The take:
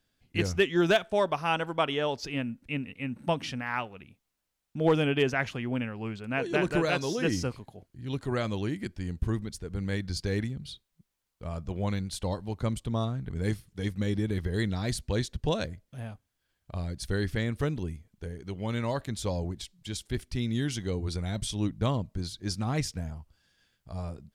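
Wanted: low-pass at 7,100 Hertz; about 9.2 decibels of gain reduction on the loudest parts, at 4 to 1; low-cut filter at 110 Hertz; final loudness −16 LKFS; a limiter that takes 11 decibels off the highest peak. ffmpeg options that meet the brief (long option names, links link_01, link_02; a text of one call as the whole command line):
ffmpeg -i in.wav -af "highpass=110,lowpass=7100,acompressor=threshold=-30dB:ratio=4,volume=24dB,alimiter=limit=-5.5dB:level=0:latency=1" out.wav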